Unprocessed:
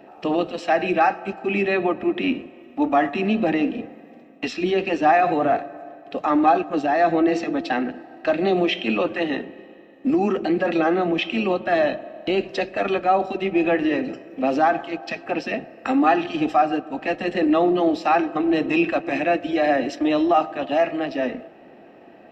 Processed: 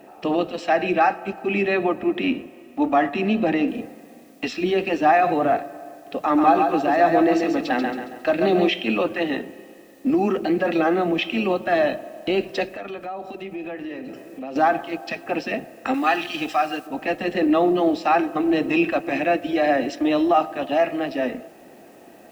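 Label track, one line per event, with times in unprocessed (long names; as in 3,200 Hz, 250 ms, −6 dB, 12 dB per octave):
3.680000	3.680000	noise floor change −66 dB −60 dB
6.210000	8.690000	repeating echo 137 ms, feedback 40%, level −5 dB
12.720000	14.560000	downward compressor 3 to 1, threshold −33 dBFS
15.940000	16.870000	tilt shelving filter lows −7.5 dB, about 1,300 Hz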